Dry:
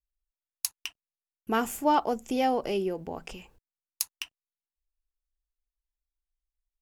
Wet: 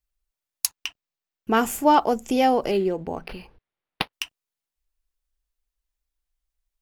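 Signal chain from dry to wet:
0:00.66–0:01.57: parametric band 11,000 Hz −12.5 dB 0.74 octaves
0:02.71–0:04.13: linearly interpolated sample-rate reduction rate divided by 6×
level +6.5 dB

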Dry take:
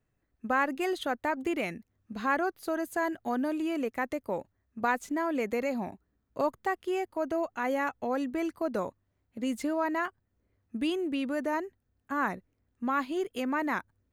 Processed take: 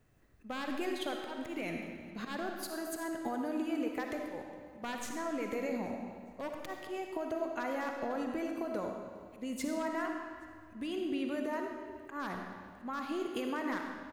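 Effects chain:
wavefolder on the positive side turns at −22.5 dBFS
in parallel at +2 dB: brickwall limiter −26.5 dBFS, peak gain reduction 9.5 dB
on the sum: volume swells 403 ms
downward compressor 5 to 1, threshold −39 dBFS, peak gain reduction 16 dB
on a send: repeating echo 413 ms, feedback 49%, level −24 dB
on the sum: comb and all-pass reverb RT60 1.8 s, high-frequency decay 0.85×, pre-delay 20 ms, DRR 2 dB
level +2 dB

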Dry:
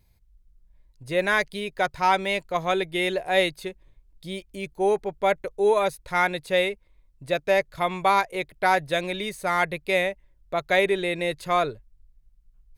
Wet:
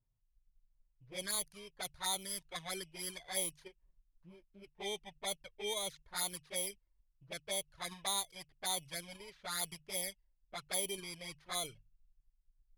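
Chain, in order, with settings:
samples in bit-reversed order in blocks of 16 samples
flanger swept by the level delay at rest 7.8 ms, full sweep at −18 dBFS
guitar amp tone stack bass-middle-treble 5-5-5
mains-hum notches 50/100/150 Hz
in parallel at −3 dB: output level in coarse steps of 23 dB
on the sum: low-pass that shuts in the quiet parts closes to 880 Hz, open at −30 dBFS
level −1.5 dB

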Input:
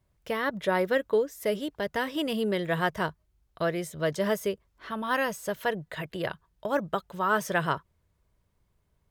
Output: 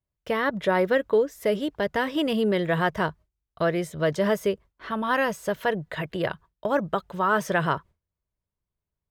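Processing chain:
noise gate with hold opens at −55 dBFS
high-shelf EQ 4,900 Hz −8.5 dB
in parallel at −1.5 dB: brickwall limiter −21 dBFS, peak gain reduction 8 dB

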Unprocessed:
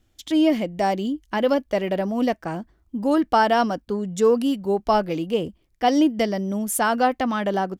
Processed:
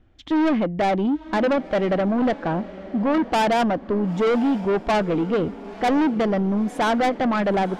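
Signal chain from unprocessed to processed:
low-pass filter 1,900 Hz 12 dB per octave
soft clipping −24.5 dBFS, distortion −7 dB
on a send: feedback delay with all-pass diffusion 963 ms, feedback 41%, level −16 dB
on the sum: level +7.5 dB

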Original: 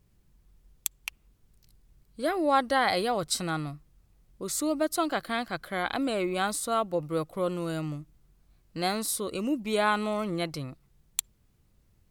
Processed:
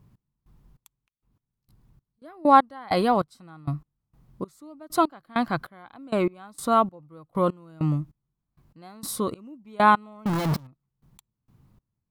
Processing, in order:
0:10.26–0:10.67: sign of each sample alone
octave-band graphic EQ 125/250/1,000/8,000 Hz +12/+8/+11/−4 dB
0:00.95–0:02.22: downward compressor 6 to 1, threshold −54 dBFS, peak gain reduction 24 dB
gate pattern "x..xx..." 98 BPM −24 dB

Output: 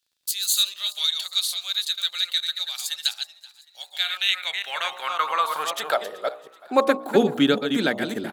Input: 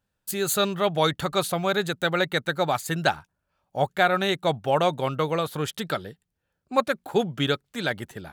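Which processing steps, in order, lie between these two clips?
delay that plays each chunk backwards 185 ms, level −7.5 dB
hum removal 60.52 Hz, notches 20
in parallel at 0 dB: downward compressor, threshold −33 dBFS, peak gain reduction 16 dB
on the sum: high-pass filter sweep 4,000 Hz → 250 Hz, 0:03.84–0:07.16
surface crackle 33 per second −55 dBFS
on a send: echo with shifted repeats 379 ms, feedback 52%, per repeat +49 Hz, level −22 dB

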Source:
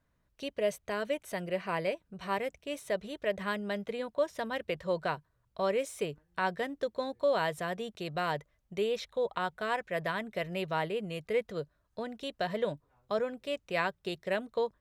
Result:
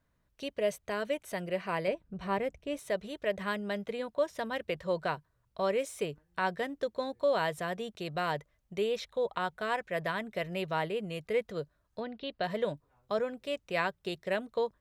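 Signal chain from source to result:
0:01.88–0:02.79: spectral tilt −2 dB per octave
0:12.00–0:12.44: Chebyshev low-pass filter 4,700 Hz, order 5

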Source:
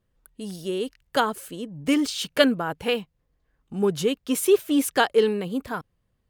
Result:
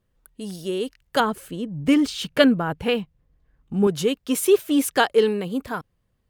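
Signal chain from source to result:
0:01.20–0:03.87: bass and treble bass +7 dB, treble −5 dB
level +1.5 dB

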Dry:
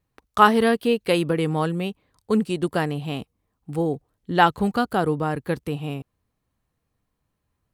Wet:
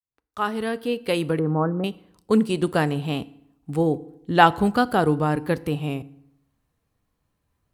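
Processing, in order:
fade in at the beginning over 1.91 s
pitch vibrato 1.3 Hz 36 cents
0:01.39–0:01.84: Butterworth low-pass 1,500 Hz 48 dB per octave
feedback delay network reverb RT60 0.78 s, low-frequency decay 1.1×, high-frequency decay 0.75×, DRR 16.5 dB
level +2 dB

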